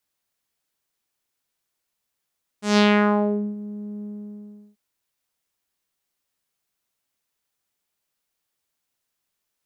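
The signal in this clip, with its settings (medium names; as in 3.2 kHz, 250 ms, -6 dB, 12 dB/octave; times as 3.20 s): synth note saw G#3 12 dB/octave, low-pass 280 Hz, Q 1.9, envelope 5 oct, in 0.82 s, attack 153 ms, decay 0.78 s, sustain -20 dB, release 0.73 s, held 1.41 s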